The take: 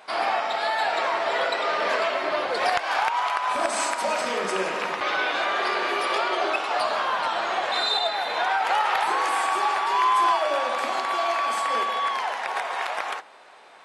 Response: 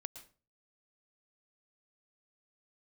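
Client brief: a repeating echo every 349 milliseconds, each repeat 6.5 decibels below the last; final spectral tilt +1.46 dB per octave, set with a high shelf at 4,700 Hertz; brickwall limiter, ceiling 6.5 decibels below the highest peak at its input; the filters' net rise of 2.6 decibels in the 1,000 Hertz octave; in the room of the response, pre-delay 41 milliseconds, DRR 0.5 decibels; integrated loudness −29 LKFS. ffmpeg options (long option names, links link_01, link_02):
-filter_complex "[0:a]equalizer=frequency=1000:width_type=o:gain=3.5,highshelf=frequency=4700:gain=-8.5,alimiter=limit=-14.5dB:level=0:latency=1,aecho=1:1:349|698|1047|1396|1745|2094:0.473|0.222|0.105|0.0491|0.0231|0.0109,asplit=2[link_01][link_02];[1:a]atrim=start_sample=2205,adelay=41[link_03];[link_02][link_03]afir=irnorm=-1:irlink=0,volume=3dB[link_04];[link_01][link_04]amix=inputs=2:normalize=0,volume=-9dB"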